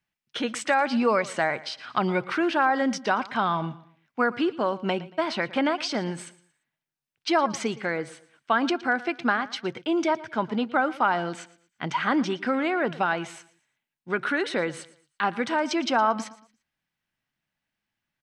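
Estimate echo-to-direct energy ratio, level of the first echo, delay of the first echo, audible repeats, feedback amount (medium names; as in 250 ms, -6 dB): -18.0 dB, -18.5 dB, 115 ms, 2, 34%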